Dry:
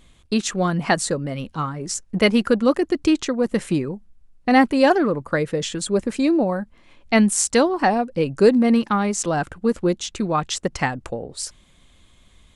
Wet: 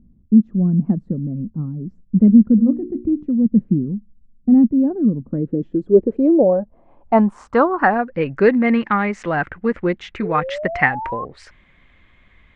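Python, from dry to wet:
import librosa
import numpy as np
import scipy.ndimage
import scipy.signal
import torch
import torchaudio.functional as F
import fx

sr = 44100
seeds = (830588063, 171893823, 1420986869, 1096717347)

y = fx.hum_notches(x, sr, base_hz=60, count=8, at=(2.57, 3.25), fade=0.02)
y = fx.filter_sweep_lowpass(y, sr, from_hz=220.0, to_hz=2000.0, start_s=5.16, end_s=8.27, q=3.5)
y = fx.spec_paint(y, sr, seeds[0], shape='rise', start_s=10.22, length_s=1.03, low_hz=420.0, high_hz=1100.0, level_db=-27.0)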